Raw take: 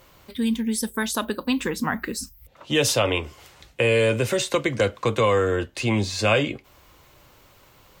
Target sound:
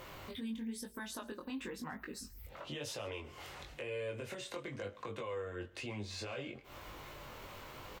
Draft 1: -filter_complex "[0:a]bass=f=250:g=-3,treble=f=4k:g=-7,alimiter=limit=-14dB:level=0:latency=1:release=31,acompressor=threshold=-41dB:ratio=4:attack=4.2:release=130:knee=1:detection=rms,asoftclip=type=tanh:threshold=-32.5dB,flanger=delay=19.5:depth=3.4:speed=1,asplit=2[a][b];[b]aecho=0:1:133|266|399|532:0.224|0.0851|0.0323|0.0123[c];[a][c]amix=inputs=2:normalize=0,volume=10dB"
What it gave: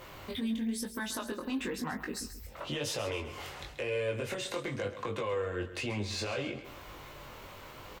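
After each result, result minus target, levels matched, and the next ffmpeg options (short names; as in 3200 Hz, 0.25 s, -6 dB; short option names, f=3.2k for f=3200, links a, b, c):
compressor: peak gain reduction -8.5 dB; echo-to-direct +10 dB
-filter_complex "[0:a]bass=f=250:g=-3,treble=f=4k:g=-7,alimiter=limit=-14dB:level=0:latency=1:release=31,acompressor=threshold=-52dB:ratio=4:attack=4.2:release=130:knee=1:detection=rms,asoftclip=type=tanh:threshold=-32.5dB,flanger=delay=19.5:depth=3.4:speed=1,asplit=2[a][b];[b]aecho=0:1:133|266|399|532:0.224|0.0851|0.0323|0.0123[c];[a][c]amix=inputs=2:normalize=0,volume=10dB"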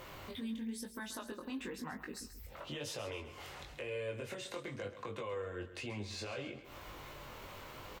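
echo-to-direct +10 dB
-filter_complex "[0:a]bass=f=250:g=-3,treble=f=4k:g=-7,alimiter=limit=-14dB:level=0:latency=1:release=31,acompressor=threshold=-52dB:ratio=4:attack=4.2:release=130:knee=1:detection=rms,asoftclip=type=tanh:threshold=-32.5dB,flanger=delay=19.5:depth=3.4:speed=1,asplit=2[a][b];[b]aecho=0:1:133|266|399:0.0708|0.0269|0.0102[c];[a][c]amix=inputs=2:normalize=0,volume=10dB"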